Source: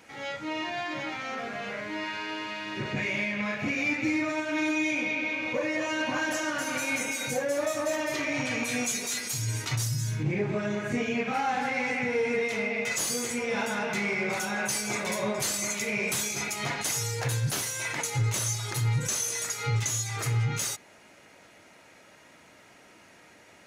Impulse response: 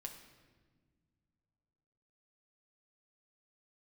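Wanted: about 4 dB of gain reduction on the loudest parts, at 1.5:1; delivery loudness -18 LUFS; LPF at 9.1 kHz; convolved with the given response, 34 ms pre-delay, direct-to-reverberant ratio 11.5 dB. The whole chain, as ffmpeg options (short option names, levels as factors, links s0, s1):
-filter_complex "[0:a]lowpass=9100,acompressor=threshold=0.02:ratio=1.5,asplit=2[s0][s1];[1:a]atrim=start_sample=2205,adelay=34[s2];[s1][s2]afir=irnorm=-1:irlink=0,volume=0.422[s3];[s0][s3]amix=inputs=2:normalize=0,volume=4.73"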